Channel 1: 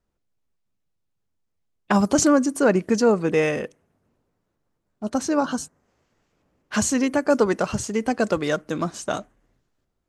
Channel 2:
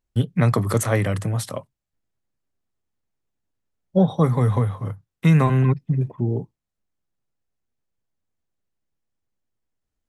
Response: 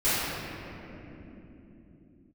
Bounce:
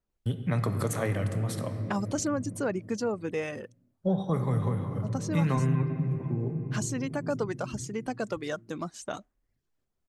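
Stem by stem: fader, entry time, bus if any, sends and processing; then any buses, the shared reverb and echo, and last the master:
−8.0 dB, 0.00 s, no send, reverb reduction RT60 0.51 s
−5.5 dB, 0.10 s, send −22.5 dB, no processing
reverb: on, pre-delay 3 ms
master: downward compressor 1.5 to 1, threshold −32 dBFS, peak gain reduction 6 dB

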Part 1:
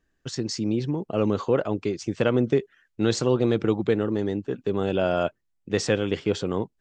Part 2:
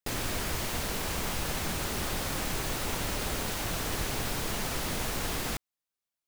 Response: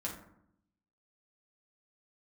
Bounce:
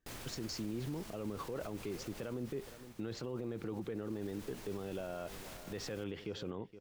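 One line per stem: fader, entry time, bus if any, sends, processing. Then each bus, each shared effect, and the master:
−9.0 dB, 0.00 s, no send, echo send −21.5 dB, treble cut that deepens with the level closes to 2,500 Hz, closed at −17.5 dBFS; brickwall limiter −13.5 dBFS, peak gain reduction 5.5 dB
0:02.22 −8 dB → 0:02.45 −18.5 dB → 0:03.94 −18.5 dB → 0:04.29 −6.5 dB, 0.00 s, no send, echo send −9 dB, brickwall limiter −27.5 dBFS, peak gain reduction 9.5 dB; automatic ducking −8 dB, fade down 0.80 s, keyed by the first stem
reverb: not used
echo: repeating echo 467 ms, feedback 16%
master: brickwall limiter −31.5 dBFS, peak gain reduction 9.5 dB

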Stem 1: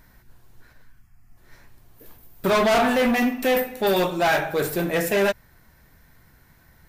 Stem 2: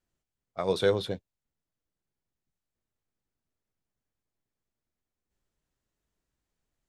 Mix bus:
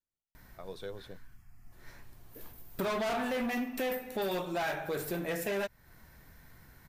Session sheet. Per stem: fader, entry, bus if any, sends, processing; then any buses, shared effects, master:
−1.5 dB, 0.35 s, no send, no processing
−16.0 dB, 0.00 s, no send, no processing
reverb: not used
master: downward compressor 2.5 to 1, threshold −37 dBFS, peak gain reduction 12.5 dB

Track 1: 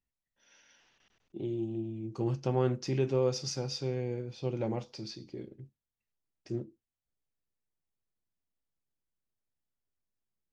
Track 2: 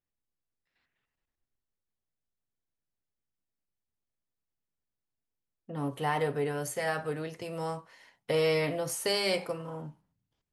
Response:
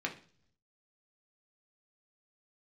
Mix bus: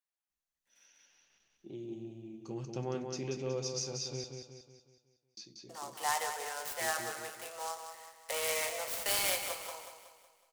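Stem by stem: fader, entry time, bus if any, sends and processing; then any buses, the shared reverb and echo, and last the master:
−8.5 dB, 0.30 s, muted 0:04.24–0:05.37, no send, echo send −5.5 dB, thirty-one-band graphic EQ 100 Hz −11 dB, 2,500 Hz +4 dB, 4,000 Hz +3 dB, 6,300 Hz +9 dB; automatic ducking −7 dB, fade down 0.40 s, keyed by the second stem
−1.5 dB, 0.00 s, no send, echo send −8 dB, high-pass filter 680 Hz 24 dB per octave; high-shelf EQ 9,700 Hz −10.5 dB; short delay modulated by noise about 6,000 Hz, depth 0.049 ms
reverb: not used
echo: repeating echo 185 ms, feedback 47%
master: high-shelf EQ 5,100 Hz +5.5 dB

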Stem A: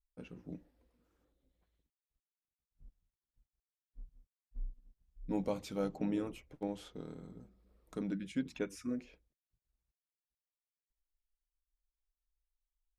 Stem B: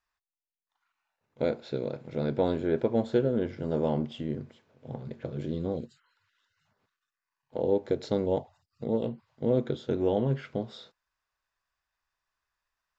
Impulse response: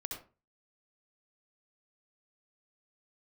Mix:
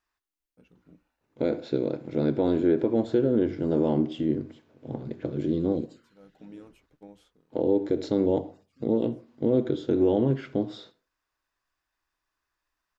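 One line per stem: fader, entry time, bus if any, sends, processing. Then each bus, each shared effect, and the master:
−9.5 dB, 0.40 s, no send, automatic ducking −19 dB, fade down 0.30 s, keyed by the second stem
0.0 dB, 0.00 s, send −13 dB, parametric band 310 Hz +11 dB 0.6 octaves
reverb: on, RT60 0.35 s, pre-delay 61 ms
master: brickwall limiter −13 dBFS, peak gain reduction 5.5 dB

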